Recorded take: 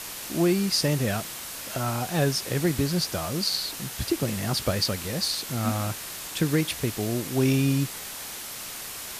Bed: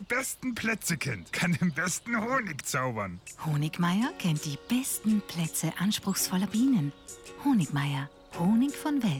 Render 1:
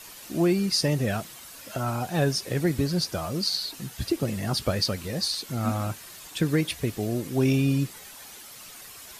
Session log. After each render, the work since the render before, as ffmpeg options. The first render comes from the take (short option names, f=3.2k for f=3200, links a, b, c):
-af "afftdn=nr=10:nf=-37"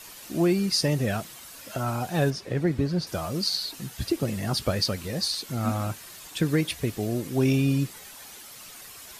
-filter_complex "[0:a]asettb=1/sr,asplit=3[a][b][c];[a]atrim=end=2.304[d];[b]atrim=start=2.3:end=3.07,asetpts=PTS-STARTPTS,afade=t=in:d=0.004:c=qsin,afade=t=out:st=0.766:d=0.004:c=qsin,aemphasis=mode=reproduction:type=75kf[e];[c]atrim=start=3.066[f];[d][e]acrossfade=d=0.004:c1=hsin:c2=qsin[g];[g][f]acrossfade=d=0.004:c1=qsin:c2=hsin"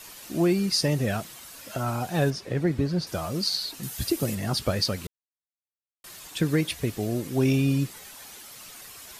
-filter_complex "[0:a]asettb=1/sr,asplit=3[a][b][c];[a]atrim=end=3.834[d];[b]atrim=start=3.83:end=4.35,asetpts=PTS-STARTPTS,afade=t=in:d=0.004:c=qsin,afade=t=out:st=0.516:d=0.004:c=qsin,highshelf=f=7k:g=11.5[e];[c]atrim=start=4.346[f];[d][e]acrossfade=d=0.004:c1=hsin:c2=qsin[g];[g][f]acrossfade=d=0.004:c1=qsin:c2=hsin,asplit=3[h][i][j];[h]atrim=end=5.07,asetpts=PTS-STARTPTS,afade=t=out:st=5.066:d=0.004:c=hsin[k];[i]atrim=start=5.07:end=6.04,asetpts=PTS-STARTPTS,volume=0[l];[j]atrim=start=6.04,asetpts=PTS-STARTPTS,afade=t=in:d=0.004:c=hsin[m];[k][l][m]concat=n=3:v=0:a=1"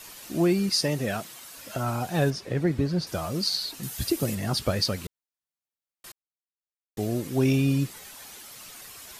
-filter_complex "[0:a]asettb=1/sr,asplit=3[a][b][c];[a]atrim=end=0.694[d];[b]atrim=start=0.69:end=1.57,asetpts=PTS-STARTPTS,afade=t=in:d=0.004:c=qsin,afade=t=out:st=0.876:d=0.004:c=qsin,highpass=f=190:p=1[e];[c]atrim=start=1.566[f];[d][e]acrossfade=d=0.004:c1=hsin:c2=qsin[g];[g][f]acrossfade=d=0.004:c1=qsin:c2=hsin,asplit=3[h][i][j];[h]atrim=end=6.12,asetpts=PTS-STARTPTS,afade=t=out:st=6.116:d=0.004:c=hsin[k];[i]atrim=start=6.12:end=6.97,asetpts=PTS-STARTPTS,volume=0[l];[j]atrim=start=6.97,asetpts=PTS-STARTPTS,afade=t=in:d=0.004:c=hsin[m];[k][l][m]concat=n=3:v=0:a=1"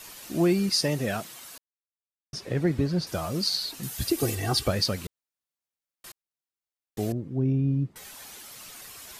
-filter_complex "[0:a]asettb=1/sr,asplit=3[a][b][c];[a]atrim=end=4.184[d];[b]atrim=start=4.18:end=4.68,asetpts=PTS-STARTPTS,afade=t=in:d=0.004:c=qsin,afade=t=out:st=0.496:d=0.004:c=qsin,aecho=1:1:2.6:0.93,atrim=end_sample=22050[e];[c]atrim=start=4.676[f];[d][e]acrossfade=d=0.004:c1=hsin:c2=qsin[g];[g][f]acrossfade=d=0.004:c1=qsin:c2=hsin,asettb=1/sr,asplit=3[h][i][j];[h]atrim=end=7.124[k];[i]atrim=start=7.12:end=7.96,asetpts=PTS-STARTPTS,afade=t=in:d=0.004:c=qsin,afade=t=out:st=0.836:d=0.004:c=qsin,bandpass=f=120:t=q:w=0.68[l];[j]atrim=start=7.956[m];[k][l]acrossfade=d=0.004:c1=hsin:c2=qsin[n];[n][m]acrossfade=d=0.004:c1=qsin:c2=hsin,asplit=3[o][p][q];[o]atrim=end=1.58,asetpts=PTS-STARTPTS,afade=t=out:st=1.576:d=0.004:c=hsin[r];[p]atrim=start=1.58:end=2.33,asetpts=PTS-STARTPTS,volume=0[s];[q]atrim=start=2.33,asetpts=PTS-STARTPTS,afade=t=in:d=0.004:c=hsin[t];[r][s][t]concat=n=3:v=0:a=1"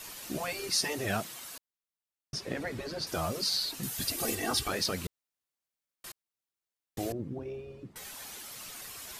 -af "afftfilt=real='re*lt(hypot(re,im),0.224)':imag='im*lt(hypot(re,im),0.224)':win_size=1024:overlap=0.75"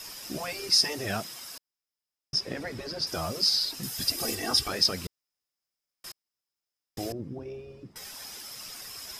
-af "equalizer=f=5.1k:t=o:w=0.2:g=14,bandreject=f=4.4k:w=17"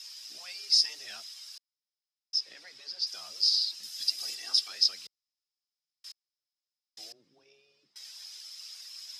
-af "bandpass=f=4.5k:t=q:w=1.8:csg=0,afreqshift=13"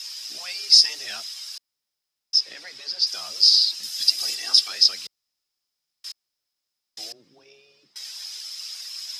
-af "volume=10dB,alimiter=limit=-3dB:level=0:latency=1"